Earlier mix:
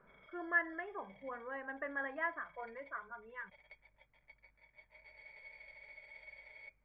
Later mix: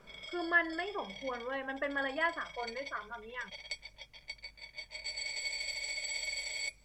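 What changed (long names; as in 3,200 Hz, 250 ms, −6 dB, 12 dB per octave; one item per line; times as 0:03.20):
background +4.5 dB
master: remove transistor ladder low-pass 2,100 Hz, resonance 35%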